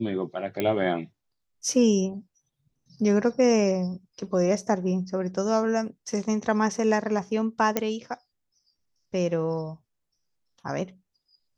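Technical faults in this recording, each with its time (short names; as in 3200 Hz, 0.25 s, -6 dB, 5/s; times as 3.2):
0.6 pop -13 dBFS
7.77 pop -9 dBFS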